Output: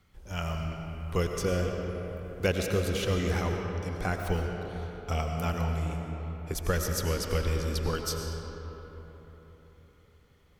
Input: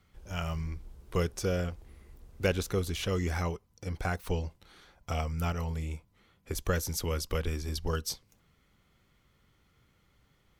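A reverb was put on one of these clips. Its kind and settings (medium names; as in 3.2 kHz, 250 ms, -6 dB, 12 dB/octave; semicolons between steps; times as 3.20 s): algorithmic reverb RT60 4.1 s, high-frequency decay 0.5×, pre-delay 60 ms, DRR 2.5 dB; trim +1 dB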